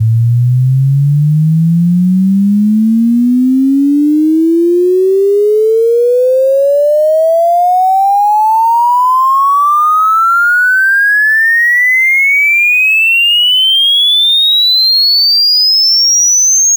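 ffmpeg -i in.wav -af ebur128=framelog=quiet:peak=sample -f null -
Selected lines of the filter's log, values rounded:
Integrated loudness:
  I:          -7.3 LUFS
  Threshold: -17.3 LUFS
Loudness range:
  LRA:         4.3 LU
  Threshold: -27.5 LUFS
  LRA low:    -9.4 LUFS
  LRA high:   -5.1 LUFS
Sample peak:
  Peak:       -5.2 dBFS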